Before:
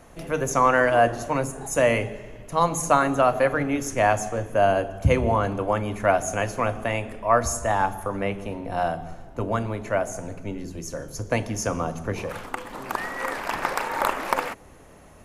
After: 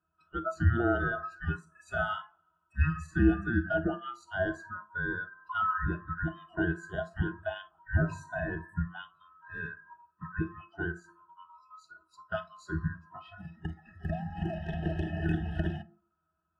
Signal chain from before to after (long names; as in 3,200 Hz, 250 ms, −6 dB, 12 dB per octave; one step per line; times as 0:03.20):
neighbouring bands swapped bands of 1,000 Hz
noise reduction from a noise print of the clip's start 25 dB
in parallel at +2 dB: brickwall limiter −15.5 dBFS, peak gain reduction 9.5 dB
on the sum: resonances in every octave F, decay 0.13 s
on a send at −16 dB: convolution reverb RT60 0.40 s, pre-delay 26 ms
on the sum: wrong playback speed 48 kHz file played as 44.1 kHz
level +2.5 dB